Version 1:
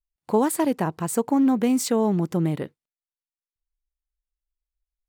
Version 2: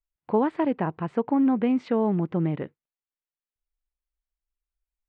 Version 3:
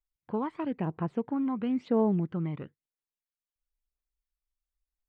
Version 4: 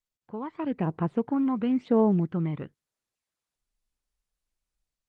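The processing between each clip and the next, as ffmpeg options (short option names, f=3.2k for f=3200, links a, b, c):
-af "lowpass=f=2.8k:w=0.5412,lowpass=f=2.8k:w=1.3066,volume=-2dB"
-af "aphaser=in_gain=1:out_gain=1:delay=1:decay=0.57:speed=1:type=triangular,volume=-8dB"
-af "dynaudnorm=f=370:g=3:m=12dB,volume=-7.5dB" -ar 48000 -c:a libopus -b:a 24k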